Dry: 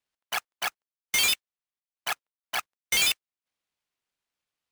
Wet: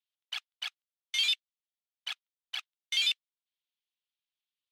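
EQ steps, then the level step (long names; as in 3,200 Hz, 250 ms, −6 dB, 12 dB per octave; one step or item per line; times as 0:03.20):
resonant band-pass 3,400 Hz, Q 3
0.0 dB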